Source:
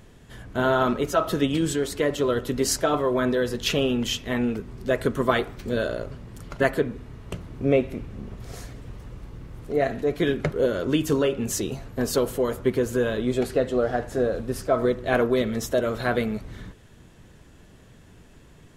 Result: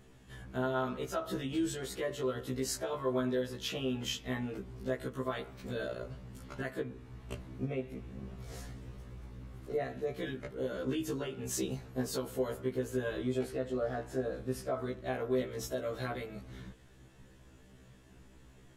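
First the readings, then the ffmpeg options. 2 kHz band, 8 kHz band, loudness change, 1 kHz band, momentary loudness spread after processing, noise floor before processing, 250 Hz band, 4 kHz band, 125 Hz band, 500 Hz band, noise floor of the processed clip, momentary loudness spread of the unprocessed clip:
−13.0 dB, −10.5 dB, −12.0 dB, −13.0 dB, 13 LU, −51 dBFS, −11.5 dB, −11.0 dB, −10.0 dB, −12.0 dB, −58 dBFS, 16 LU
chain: -af "alimiter=limit=-17.5dB:level=0:latency=1:release=358,afftfilt=real='re*1.73*eq(mod(b,3),0)':imag='im*1.73*eq(mod(b,3),0)':win_size=2048:overlap=0.75,volume=-5dB"

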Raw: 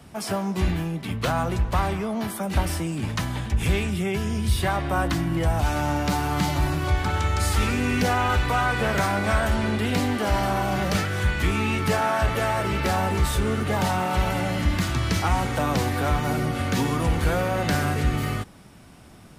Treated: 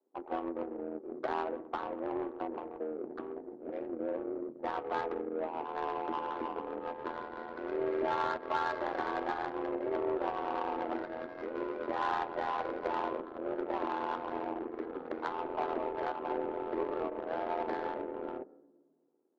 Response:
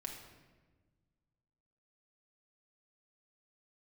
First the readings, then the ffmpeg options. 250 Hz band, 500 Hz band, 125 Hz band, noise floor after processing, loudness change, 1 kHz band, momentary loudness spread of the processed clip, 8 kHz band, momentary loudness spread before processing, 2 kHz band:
−13.5 dB, −7.0 dB, −35.0 dB, −59 dBFS, −12.5 dB, −9.0 dB, 8 LU, below −35 dB, 4 LU, −16.0 dB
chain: -filter_complex "[0:a]aemphasis=mode=reproduction:type=75fm,afwtdn=0.0282,acompressor=threshold=-20dB:ratio=6,highpass=frequency=200:width_type=q:width=0.5412,highpass=frequency=200:width_type=q:width=1.307,lowpass=frequency=2200:width_type=q:width=0.5176,lowpass=frequency=2200:width_type=q:width=0.7071,lowpass=frequency=2200:width_type=q:width=1.932,afreqshift=140,tremolo=f=83:d=0.71,asplit=2[link_01][link_02];[1:a]atrim=start_sample=2205,adelay=8[link_03];[link_02][link_03]afir=irnorm=-1:irlink=0,volume=-6.5dB[link_04];[link_01][link_04]amix=inputs=2:normalize=0,adynamicsmooth=sensitivity=1:basefreq=530,volume=-3.5dB"

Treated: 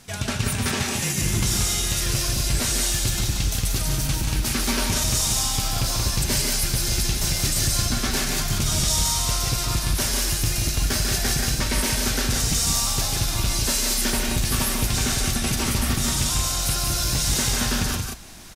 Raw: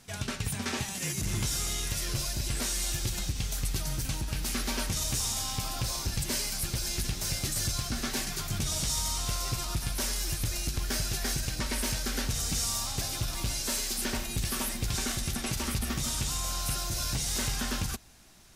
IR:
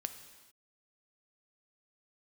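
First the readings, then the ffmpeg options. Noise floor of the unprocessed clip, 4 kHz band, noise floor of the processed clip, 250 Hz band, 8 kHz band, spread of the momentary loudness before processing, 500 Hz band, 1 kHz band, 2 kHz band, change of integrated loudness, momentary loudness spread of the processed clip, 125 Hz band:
−37 dBFS, +9.0 dB, −27 dBFS, +9.0 dB, +9.0 dB, 3 LU, +9.0 dB, +8.5 dB, +9.0 dB, +9.0 dB, 3 LU, +9.0 dB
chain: -af "areverse,acompressor=mode=upward:threshold=-44dB:ratio=2.5,areverse,aecho=1:1:145.8|180.8:0.501|0.562,volume=7dB"

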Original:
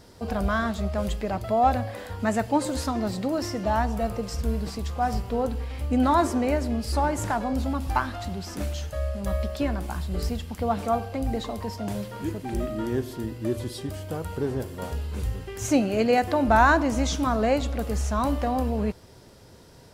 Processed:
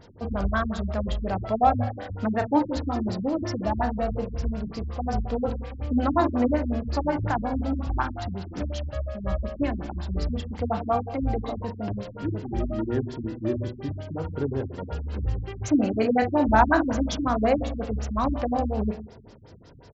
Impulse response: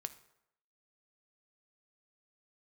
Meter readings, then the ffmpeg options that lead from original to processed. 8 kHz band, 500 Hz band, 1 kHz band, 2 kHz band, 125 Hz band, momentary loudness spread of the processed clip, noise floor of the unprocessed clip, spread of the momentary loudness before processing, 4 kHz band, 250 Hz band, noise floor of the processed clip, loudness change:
can't be measured, −1.0 dB, −1.0 dB, −3.0 dB, +0.5 dB, 10 LU, −49 dBFS, 10 LU, −4.5 dB, +0.5 dB, −47 dBFS, −0.5 dB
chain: -filter_complex "[0:a]asplit=2[link_01][link_02];[link_02]adelay=37,volume=-10dB[link_03];[link_01][link_03]amix=inputs=2:normalize=0[link_04];[1:a]atrim=start_sample=2205,asetrate=31311,aresample=44100[link_05];[link_04][link_05]afir=irnorm=-1:irlink=0,afftfilt=real='re*lt(b*sr/1024,260*pow(7800/260,0.5+0.5*sin(2*PI*5.5*pts/sr)))':imag='im*lt(b*sr/1024,260*pow(7800/260,0.5+0.5*sin(2*PI*5.5*pts/sr)))':win_size=1024:overlap=0.75,volume=1.5dB"

